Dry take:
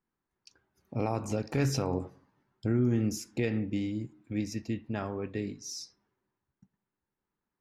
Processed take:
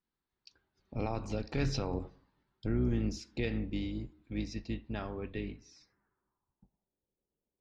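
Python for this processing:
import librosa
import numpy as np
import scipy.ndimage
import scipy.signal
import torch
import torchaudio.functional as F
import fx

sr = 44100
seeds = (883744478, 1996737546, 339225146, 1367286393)

y = fx.octave_divider(x, sr, octaves=2, level_db=-3.0)
y = fx.filter_sweep_lowpass(y, sr, from_hz=4100.0, to_hz=540.0, start_s=5.2, end_s=7.02, q=2.6)
y = y * librosa.db_to_amplitude(-5.0)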